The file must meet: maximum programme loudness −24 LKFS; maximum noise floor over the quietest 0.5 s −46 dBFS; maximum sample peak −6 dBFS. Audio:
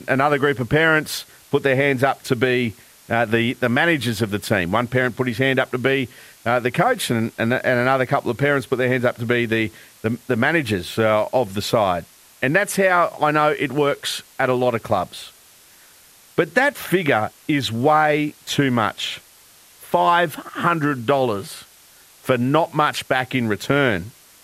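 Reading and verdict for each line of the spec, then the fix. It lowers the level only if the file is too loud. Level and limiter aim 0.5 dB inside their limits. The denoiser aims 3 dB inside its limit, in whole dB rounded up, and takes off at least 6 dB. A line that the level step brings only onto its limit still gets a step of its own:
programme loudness −20.0 LKFS: out of spec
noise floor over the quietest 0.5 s −50 dBFS: in spec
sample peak −4.0 dBFS: out of spec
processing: level −4.5 dB

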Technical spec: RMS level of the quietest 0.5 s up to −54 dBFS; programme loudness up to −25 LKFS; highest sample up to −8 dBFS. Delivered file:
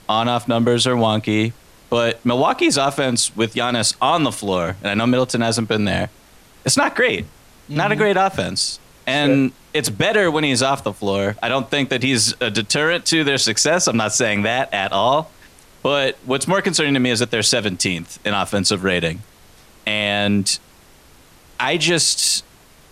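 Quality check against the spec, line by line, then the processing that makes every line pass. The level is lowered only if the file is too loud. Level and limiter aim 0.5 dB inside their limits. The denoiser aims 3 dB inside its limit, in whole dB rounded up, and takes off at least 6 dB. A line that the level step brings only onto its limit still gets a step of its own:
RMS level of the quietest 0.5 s −48 dBFS: out of spec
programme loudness −18.0 LKFS: out of spec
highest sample −5.0 dBFS: out of spec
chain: level −7.5 dB

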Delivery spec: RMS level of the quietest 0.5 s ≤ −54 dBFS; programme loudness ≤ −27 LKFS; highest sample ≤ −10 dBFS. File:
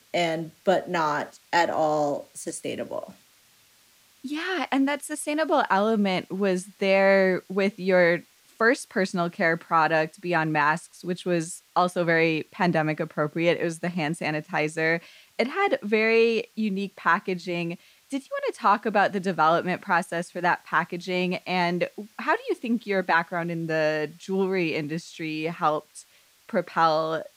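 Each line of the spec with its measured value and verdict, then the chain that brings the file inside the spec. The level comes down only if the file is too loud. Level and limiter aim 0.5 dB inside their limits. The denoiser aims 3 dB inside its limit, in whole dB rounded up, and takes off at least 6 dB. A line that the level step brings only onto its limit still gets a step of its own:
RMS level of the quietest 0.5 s −59 dBFS: in spec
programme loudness −25.0 LKFS: out of spec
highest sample −8.5 dBFS: out of spec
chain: level −2.5 dB

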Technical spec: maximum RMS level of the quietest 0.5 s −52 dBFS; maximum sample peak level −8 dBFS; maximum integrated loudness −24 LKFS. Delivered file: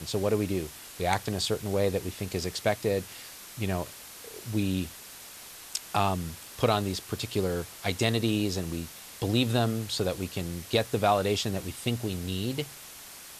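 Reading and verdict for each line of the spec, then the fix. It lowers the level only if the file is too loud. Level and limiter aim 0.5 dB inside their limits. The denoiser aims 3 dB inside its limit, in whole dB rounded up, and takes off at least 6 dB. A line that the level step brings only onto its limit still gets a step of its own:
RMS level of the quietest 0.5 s −46 dBFS: out of spec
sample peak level −10.0 dBFS: in spec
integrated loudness −29.5 LKFS: in spec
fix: broadband denoise 9 dB, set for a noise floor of −46 dBFS

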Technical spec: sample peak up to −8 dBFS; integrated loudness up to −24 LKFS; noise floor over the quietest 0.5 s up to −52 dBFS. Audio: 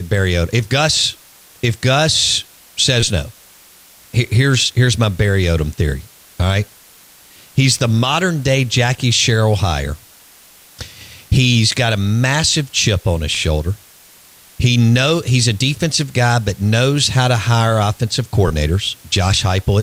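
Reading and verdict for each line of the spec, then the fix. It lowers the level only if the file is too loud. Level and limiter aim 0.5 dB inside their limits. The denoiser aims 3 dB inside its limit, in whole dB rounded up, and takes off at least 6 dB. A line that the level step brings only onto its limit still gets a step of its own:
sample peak −4.0 dBFS: out of spec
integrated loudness −15.5 LKFS: out of spec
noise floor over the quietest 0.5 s −45 dBFS: out of spec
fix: level −9 dB

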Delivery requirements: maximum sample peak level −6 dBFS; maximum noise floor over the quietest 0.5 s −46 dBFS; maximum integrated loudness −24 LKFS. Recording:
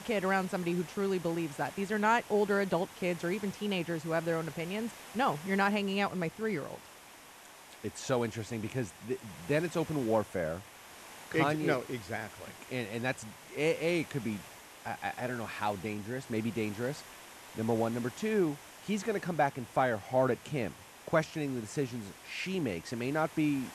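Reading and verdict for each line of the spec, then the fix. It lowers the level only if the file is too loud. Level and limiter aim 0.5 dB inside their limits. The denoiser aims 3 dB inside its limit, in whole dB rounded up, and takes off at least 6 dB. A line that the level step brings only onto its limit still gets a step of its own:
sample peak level −13.0 dBFS: in spec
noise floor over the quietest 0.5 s −53 dBFS: in spec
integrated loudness −33.5 LKFS: in spec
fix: no processing needed

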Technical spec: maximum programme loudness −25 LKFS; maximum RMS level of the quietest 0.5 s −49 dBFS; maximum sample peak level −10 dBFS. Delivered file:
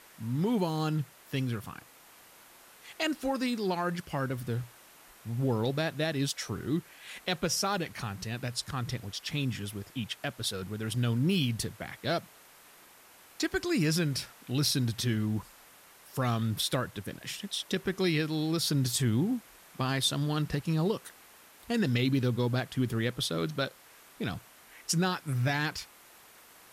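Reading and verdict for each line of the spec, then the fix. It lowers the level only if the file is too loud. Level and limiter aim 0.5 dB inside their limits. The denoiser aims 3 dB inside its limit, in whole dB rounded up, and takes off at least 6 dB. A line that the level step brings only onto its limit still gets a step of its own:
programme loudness −31.5 LKFS: in spec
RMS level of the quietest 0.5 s −56 dBFS: in spec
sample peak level −16.0 dBFS: in spec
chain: no processing needed

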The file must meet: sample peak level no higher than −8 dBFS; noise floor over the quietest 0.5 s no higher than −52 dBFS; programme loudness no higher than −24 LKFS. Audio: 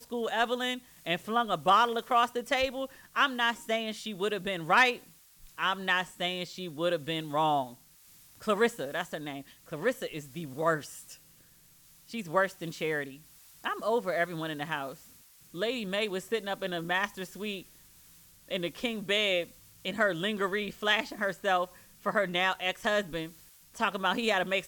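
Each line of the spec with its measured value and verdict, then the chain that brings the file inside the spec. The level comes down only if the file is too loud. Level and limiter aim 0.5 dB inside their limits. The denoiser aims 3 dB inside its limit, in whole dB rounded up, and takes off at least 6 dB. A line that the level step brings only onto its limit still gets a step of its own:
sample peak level −12.0 dBFS: in spec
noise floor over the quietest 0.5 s −59 dBFS: in spec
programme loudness −30.5 LKFS: in spec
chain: no processing needed

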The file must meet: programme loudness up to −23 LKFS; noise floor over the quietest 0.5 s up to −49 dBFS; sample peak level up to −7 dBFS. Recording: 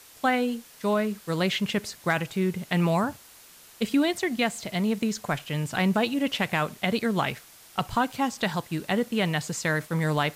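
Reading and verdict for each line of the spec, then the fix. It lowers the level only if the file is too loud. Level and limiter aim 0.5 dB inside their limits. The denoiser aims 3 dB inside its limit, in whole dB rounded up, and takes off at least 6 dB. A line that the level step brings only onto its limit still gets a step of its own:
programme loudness −27.0 LKFS: in spec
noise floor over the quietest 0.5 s −51 dBFS: in spec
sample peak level −10.5 dBFS: in spec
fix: no processing needed

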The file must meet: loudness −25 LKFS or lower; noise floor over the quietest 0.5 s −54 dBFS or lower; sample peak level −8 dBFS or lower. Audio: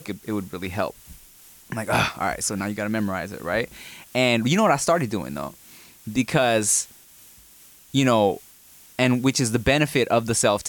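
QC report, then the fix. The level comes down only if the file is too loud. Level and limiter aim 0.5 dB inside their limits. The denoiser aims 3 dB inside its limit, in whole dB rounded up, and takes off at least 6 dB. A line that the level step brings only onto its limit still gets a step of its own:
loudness −22.5 LKFS: out of spec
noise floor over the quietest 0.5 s −50 dBFS: out of spec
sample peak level −6.5 dBFS: out of spec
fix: broadband denoise 6 dB, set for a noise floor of −50 dBFS
level −3 dB

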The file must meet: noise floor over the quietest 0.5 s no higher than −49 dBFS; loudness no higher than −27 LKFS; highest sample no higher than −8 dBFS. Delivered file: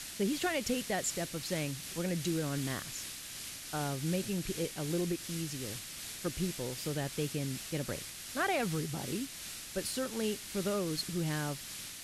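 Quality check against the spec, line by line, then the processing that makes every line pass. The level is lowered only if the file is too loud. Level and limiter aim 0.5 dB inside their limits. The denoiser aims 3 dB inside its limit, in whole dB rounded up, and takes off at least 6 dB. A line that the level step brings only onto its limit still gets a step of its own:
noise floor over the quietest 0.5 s −45 dBFS: out of spec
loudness −35.5 LKFS: in spec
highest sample −20.0 dBFS: in spec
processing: broadband denoise 7 dB, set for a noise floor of −45 dBFS

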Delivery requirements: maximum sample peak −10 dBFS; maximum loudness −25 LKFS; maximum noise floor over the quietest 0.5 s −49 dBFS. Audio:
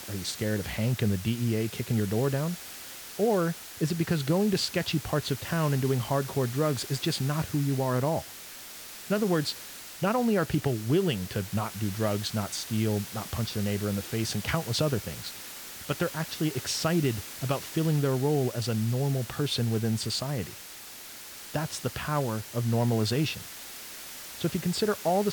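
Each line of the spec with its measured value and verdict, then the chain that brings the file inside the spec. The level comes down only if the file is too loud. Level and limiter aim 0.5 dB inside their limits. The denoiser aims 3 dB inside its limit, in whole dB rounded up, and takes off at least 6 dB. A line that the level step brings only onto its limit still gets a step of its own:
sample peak −13.0 dBFS: in spec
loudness −29.0 LKFS: in spec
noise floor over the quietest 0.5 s −44 dBFS: out of spec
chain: broadband denoise 8 dB, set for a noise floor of −44 dBFS

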